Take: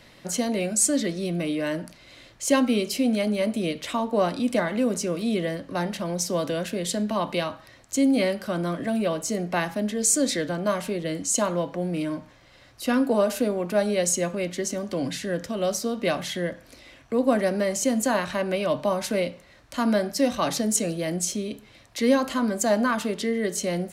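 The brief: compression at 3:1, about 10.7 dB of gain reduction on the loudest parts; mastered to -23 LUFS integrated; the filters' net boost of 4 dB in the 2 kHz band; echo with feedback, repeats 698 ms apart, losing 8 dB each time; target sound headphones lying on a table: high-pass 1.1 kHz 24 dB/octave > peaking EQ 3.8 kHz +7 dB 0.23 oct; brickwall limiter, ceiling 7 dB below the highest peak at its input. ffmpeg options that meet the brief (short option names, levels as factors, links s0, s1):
-af "equalizer=f=2000:t=o:g=5,acompressor=threshold=0.0316:ratio=3,alimiter=level_in=1.06:limit=0.0631:level=0:latency=1,volume=0.944,highpass=f=1100:w=0.5412,highpass=f=1100:w=1.3066,equalizer=f=3800:t=o:w=0.23:g=7,aecho=1:1:698|1396|2094|2792|3490:0.398|0.159|0.0637|0.0255|0.0102,volume=5.31"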